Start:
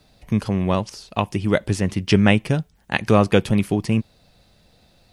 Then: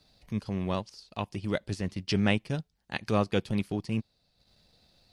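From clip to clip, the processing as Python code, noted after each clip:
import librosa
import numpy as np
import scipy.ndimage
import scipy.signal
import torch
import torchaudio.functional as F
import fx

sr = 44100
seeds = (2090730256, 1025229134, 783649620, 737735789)

y = fx.transient(x, sr, attack_db=-5, sustain_db=-9)
y = fx.peak_eq(y, sr, hz=4500.0, db=8.5, octaves=0.69)
y = F.gain(torch.from_numpy(y), -9.0).numpy()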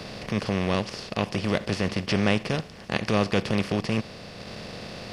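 y = fx.bin_compress(x, sr, power=0.4)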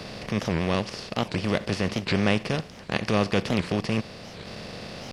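y = fx.record_warp(x, sr, rpm=78.0, depth_cents=250.0)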